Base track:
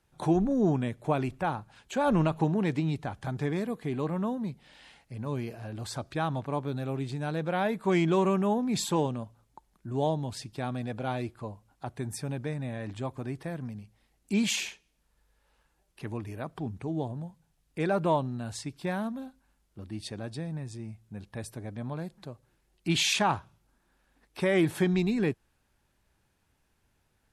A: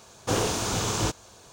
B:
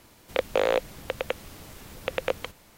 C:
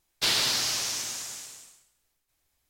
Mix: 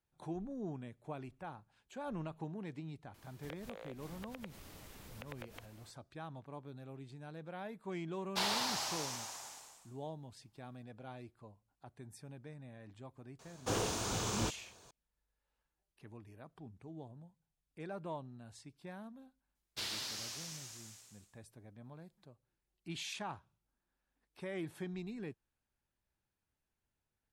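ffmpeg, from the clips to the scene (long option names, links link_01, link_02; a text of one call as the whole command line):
ffmpeg -i bed.wav -i cue0.wav -i cue1.wav -i cue2.wav -filter_complex "[3:a]asplit=2[link_01][link_02];[0:a]volume=-17dB[link_03];[2:a]acompressor=threshold=-38dB:ratio=6:attack=3.2:release=140:knee=1:detection=peak[link_04];[link_01]equalizer=frequency=850:width=1.2:gain=15[link_05];[1:a]acontrast=54[link_06];[link_04]atrim=end=2.77,asetpts=PTS-STARTPTS,volume=-9dB,afade=type=in:duration=0.004:curve=hsin,afade=type=out:start_time=2.766:duration=0.004:curve=hsin,adelay=3140[link_07];[link_05]atrim=end=2.69,asetpts=PTS-STARTPTS,volume=-12.5dB,afade=type=in:duration=0.004:curve=hsin,afade=type=out:start_time=2.686:duration=0.004:curve=hsin,adelay=8140[link_08];[link_06]atrim=end=1.52,asetpts=PTS-STARTPTS,volume=-15.5dB,afade=type=in:duration=0.004:curve=hsin,afade=type=out:start_time=1.516:duration=0.004:curve=hsin,adelay=13390[link_09];[link_02]atrim=end=2.69,asetpts=PTS-STARTPTS,volume=-16dB,afade=type=in:duration=0.004:curve=hsin,afade=type=out:start_time=2.686:duration=0.004:curve=hsin,adelay=19550[link_10];[link_03][link_07][link_08][link_09][link_10]amix=inputs=5:normalize=0" out.wav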